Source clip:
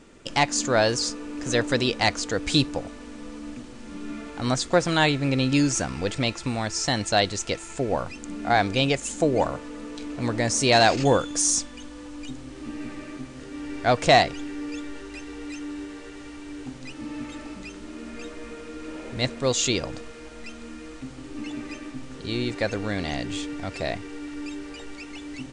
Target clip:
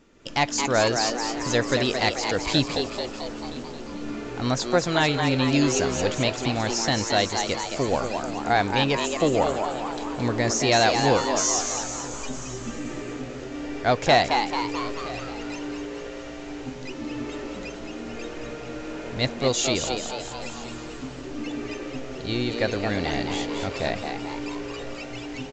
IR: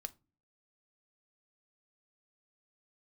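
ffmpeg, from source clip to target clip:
-filter_complex "[0:a]dynaudnorm=framelen=140:gausssize=3:maxgain=8.5dB,asplit=2[link_01][link_02];[link_02]aecho=0:1:970:0.1[link_03];[link_01][link_03]amix=inputs=2:normalize=0,aresample=16000,aresample=44100,asettb=1/sr,asplit=3[link_04][link_05][link_06];[link_04]atrim=end=12.134[link_07];[link_05]atrim=start=12.13:end=12.79,asetpts=PTS-STARTPTS,afade=type=in:duration=0.004:curve=qsin,afade=type=out:start_time=0.656:duration=0.004:curve=qsin,aecho=1:1:5:0.74,atrim=end_sample=29106[link_08];[link_06]atrim=start=12.786[link_09];[link_07][link_08]acrossfade=duration=0.004:curve1=hsin:curve2=qsin[link_10];[link_10][link_09]acrossfade=duration=0.004:curve1=qsin:curve2=hsin,asplit=2[link_11][link_12];[link_12]asplit=7[link_13][link_14][link_15][link_16][link_17][link_18][link_19];[link_13]adelay=220,afreqshift=120,volume=-6dB[link_20];[link_14]adelay=440,afreqshift=240,volume=-10.9dB[link_21];[link_15]adelay=660,afreqshift=360,volume=-15.8dB[link_22];[link_16]adelay=880,afreqshift=480,volume=-20.6dB[link_23];[link_17]adelay=1100,afreqshift=600,volume=-25.5dB[link_24];[link_18]adelay=1320,afreqshift=720,volume=-30.4dB[link_25];[link_19]adelay=1540,afreqshift=840,volume=-35.3dB[link_26];[link_20][link_21][link_22][link_23][link_24][link_25][link_26]amix=inputs=7:normalize=0[link_27];[link_11][link_27]amix=inputs=2:normalize=0,volume=-7dB"

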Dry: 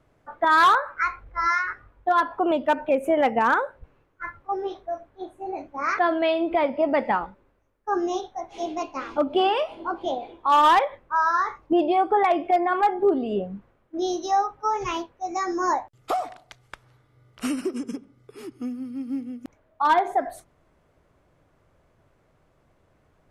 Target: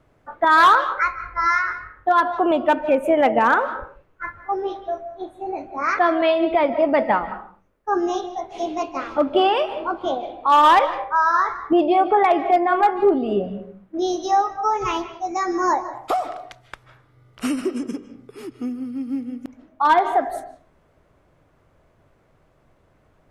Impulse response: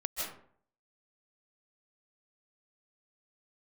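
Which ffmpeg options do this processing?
-filter_complex "[0:a]asplit=2[link_01][link_02];[1:a]atrim=start_sample=2205,afade=type=out:start_time=0.43:duration=0.01,atrim=end_sample=19404,lowpass=4800[link_03];[link_02][link_03]afir=irnorm=-1:irlink=0,volume=-12.5dB[link_04];[link_01][link_04]amix=inputs=2:normalize=0,volume=2dB"

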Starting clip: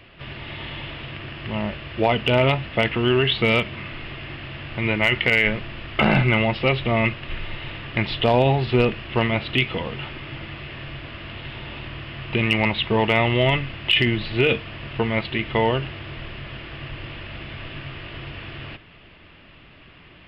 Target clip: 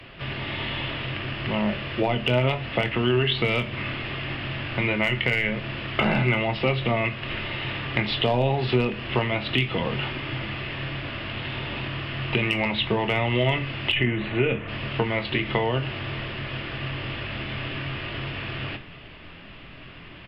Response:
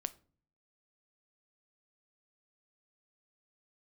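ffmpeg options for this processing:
-filter_complex "[0:a]asplit=3[link_01][link_02][link_03];[link_01]afade=type=out:start_time=13.91:duration=0.02[link_04];[link_02]lowpass=frequency=2600:width=0.5412,lowpass=frequency=2600:width=1.3066,afade=type=in:start_time=13.91:duration=0.02,afade=type=out:start_time=14.67:duration=0.02[link_05];[link_03]afade=type=in:start_time=14.67:duration=0.02[link_06];[link_04][link_05][link_06]amix=inputs=3:normalize=0,acrossover=split=89|180[link_07][link_08][link_09];[link_07]acompressor=threshold=-46dB:ratio=4[link_10];[link_08]acompressor=threshold=-38dB:ratio=4[link_11];[link_09]acompressor=threshold=-26dB:ratio=4[link_12];[link_10][link_11][link_12]amix=inputs=3:normalize=0,asplit=2[link_13][link_14];[link_14]adelay=24,volume=-11dB[link_15];[link_13][link_15]amix=inputs=2:normalize=0[link_16];[1:a]atrim=start_sample=2205,asetrate=39249,aresample=44100[link_17];[link_16][link_17]afir=irnorm=-1:irlink=0,volume=4.5dB"

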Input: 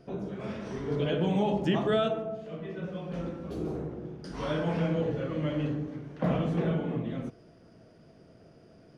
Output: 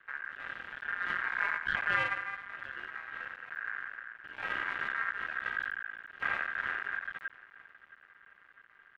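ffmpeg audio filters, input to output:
ffmpeg -i in.wav -filter_complex "[0:a]highpass=frequency=54:width=0.5412,highpass=frequency=54:width=1.3066,highpass=frequency=230:width_type=q:width=0.5412,highpass=frequency=230:width_type=q:width=1.307,lowpass=frequency=2100:width_type=q:width=0.5176,lowpass=frequency=2100:width_type=q:width=0.7071,lowpass=frequency=2100:width_type=q:width=1.932,afreqshift=-250,asplit=2[link_01][link_02];[link_02]aecho=0:1:670|1340|2010:0.0944|0.0415|0.0183[link_03];[link_01][link_03]amix=inputs=2:normalize=0,aeval=exprs='max(val(0),0)':channel_layout=same,aeval=exprs='val(0)*sin(2*PI*1600*n/s)':channel_layout=same,volume=2.5dB" out.wav

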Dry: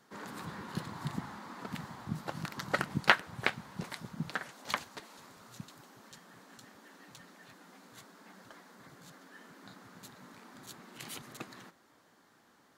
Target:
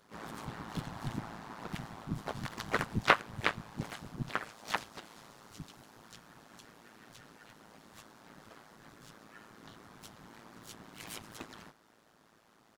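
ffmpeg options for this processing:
ffmpeg -i in.wav -filter_complex "[0:a]asplit=4[link_01][link_02][link_03][link_04];[link_02]asetrate=35002,aresample=44100,atempo=1.25992,volume=0dB[link_05];[link_03]asetrate=55563,aresample=44100,atempo=0.793701,volume=-11dB[link_06];[link_04]asetrate=66075,aresample=44100,atempo=0.66742,volume=-12dB[link_07];[link_01][link_05][link_06][link_07]amix=inputs=4:normalize=0,tremolo=f=110:d=0.788" out.wav

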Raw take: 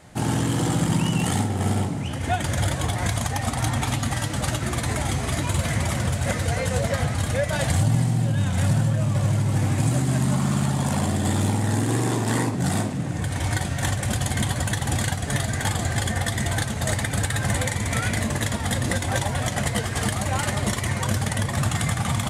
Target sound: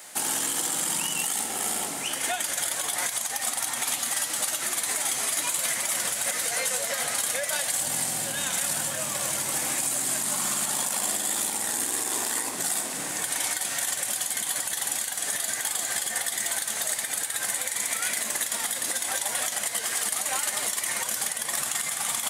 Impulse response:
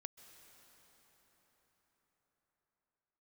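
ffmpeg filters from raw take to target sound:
-filter_complex "[0:a]highpass=220,aemphasis=mode=production:type=bsi,asplit=2[link_01][link_02];[1:a]atrim=start_sample=2205,lowshelf=frequency=180:gain=-9.5[link_03];[link_02][link_03]afir=irnorm=-1:irlink=0,volume=7dB[link_04];[link_01][link_04]amix=inputs=2:normalize=0,acompressor=threshold=-22dB:ratio=2.5,alimiter=limit=-13.5dB:level=0:latency=1:release=50,tiltshelf=frequency=840:gain=-4,volume=-5.5dB"

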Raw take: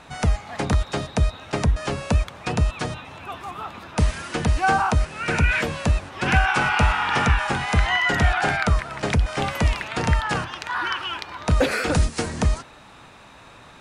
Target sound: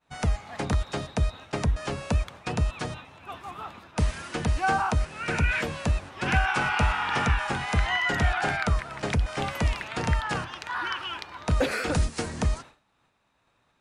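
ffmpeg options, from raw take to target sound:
ffmpeg -i in.wav -af "agate=range=-33dB:threshold=-34dB:ratio=3:detection=peak,volume=-5dB" out.wav

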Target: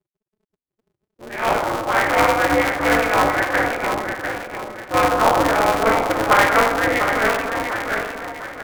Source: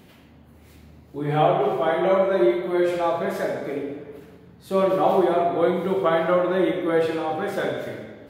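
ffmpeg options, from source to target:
ffmpeg -i in.wav -filter_complex "[0:a]afftfilt=real='re*gte(hypot(re,im),0.0282)':imag='im*gte(hypot(re,im),0.0282)':win_size=1024:overlap=0.75,tiltshelf=frequency=1400:gain=-9.5,dynaudnorm=framelen=300:gausssize=11:maxgain=14dB,highpass=frequency=250:width_type=q:width=0.5412,highpass=frequency=250:width_type=q:width=1.307,lowpass=frequency=2200:width_type=q:width=0.5176,lowpass=frequency=2200:width_type=q:width=0.7071,lowpass=frequency=2200:width_type=q:width=1.932,afreqshift=65,crystalizer=i=7.5:c=0,asplit=2[link_01][link_02];[link_02]aecho=0:1:671|1342|2013|2684:0.473|0.175|0.0648|0.024[link_03];[link_01][link_03]amix=inputs=2:normalize=0,asetrate=42336,aresample=44100,aeval=exprs='val(0)*sgn(sin(2*PI*110*n/s))':channel_layout=same,volume=-3.5dB" out.wav

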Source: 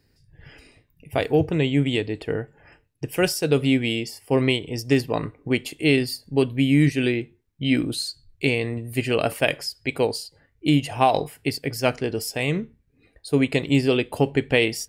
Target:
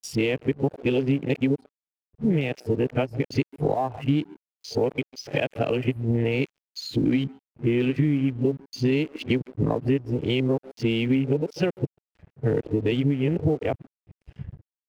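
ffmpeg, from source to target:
ffmpeg -i in.wav -filter_complex "[0:a]areverse,asplit=2[link_01][link_02];[link_02]adelay=140,highpass=300,lowpass=3400,asoftclip=type=hard:threshold=-13.5dB,volume=-20dB[link_03];[link_01][link_03]amix=inputs=2:normalize=0,acompressor=threshold=-32dB:ratio=12,highpass=54,equalizer=frequency=2700:width_type=o:width=0.8:gain=7.5,afwtdn=0.00891,tiltshelf=frequency=1300:gain=8,aeval=exprs='sgn(val(0))*max(abs(val(0))-0.00168,0)':channel_layout=same,volume=6dB" out.wav

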